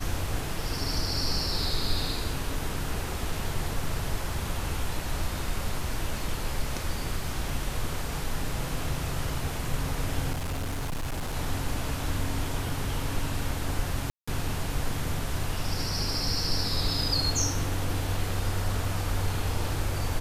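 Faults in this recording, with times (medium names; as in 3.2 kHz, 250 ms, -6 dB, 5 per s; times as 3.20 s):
10.32–11.35 s: clipped -27.5 dBFS
14.10–14.28 s: dropout 175 ms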